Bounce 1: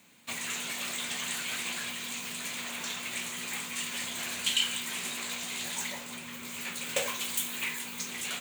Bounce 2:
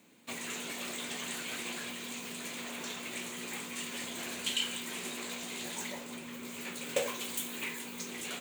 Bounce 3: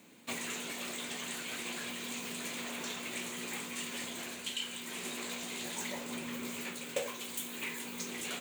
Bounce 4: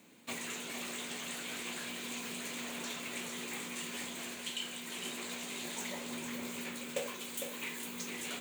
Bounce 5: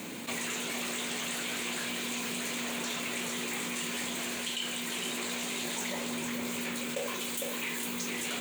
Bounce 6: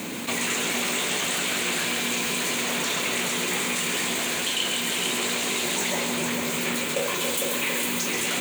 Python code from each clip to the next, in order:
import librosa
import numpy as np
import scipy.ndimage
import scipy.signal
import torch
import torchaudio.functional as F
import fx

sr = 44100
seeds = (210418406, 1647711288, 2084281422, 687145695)

y1 = fx.peak_eq(x, sr, hz=360.0, db=11.0, octaves=1.7)
y1 = F.gain(torch.from_numpy(y1), -5.5).numpy()
y2 = fx.rider(y1, sr, range_db=10, speed_s=0.5)
y2 = F.gain(torch.from_numpy(y2), -1.0).numpy()
y3 = y2 + 10.0 ** (-6.5 / 20.0) * np.pad(y2, (int(455 * sr / 1000.0), 0))[:len(y2)]
y3 = F.gain(torch.from_numpy(y3), -2.0).numpy()
y4 = fx.env_flatten(y3, sr, amount_pct=70)
y5 = fx.echo_split(y4, sr, split_hz=830.0, low_ms=276, high_ms=134, feedback_pct=52, wet_db=-6)
y5 = F.gain(torch.from_numpy(y5), 8.0).numpy()